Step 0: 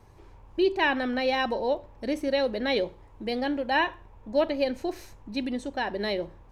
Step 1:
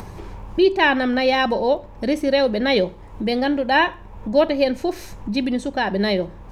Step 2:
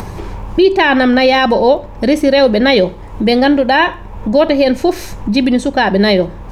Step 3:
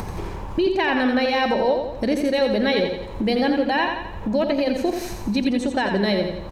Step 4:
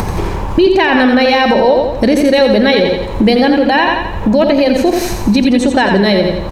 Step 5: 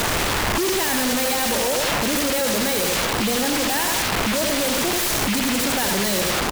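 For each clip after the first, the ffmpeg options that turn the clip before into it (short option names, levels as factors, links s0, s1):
-filter_complex "[0:a]equalizer=f=190:t=o:w=0.22:g=11.5,asplit=2[s0][s1];[s1]acompressor=mode=upward:threshold=0.0447:ratio=2.5,volume=1.41[s2];[s0][s2]amix=inputs=2:normalize=0"
-af "alimiter=level_in=3.55:limit=0.891:release=50:level=0:latency=1,volume=0.891"
-filter_complex "[0:a]acompressor=threshold=0.126:ratio=2,asplit=2[s0][s1];[s1]aecho=0:1:86|172|258|344|430|516:0.501|0.251|0.125|0.0626|0.0313|0.0157[s2];[s0][s2]amix=inputs=2:normalize=0,volume=0.562"
-af "alimiter=level_in=5.01:limit=0.891:release=50:level=0:latency=1,volume=0.891"
-af "acrusher=bits=3:mode=log:mix=0:aa=0.000001,aeval=exprs='(mod(7.08*val(0)+1,2)-1)/7.08':c=same"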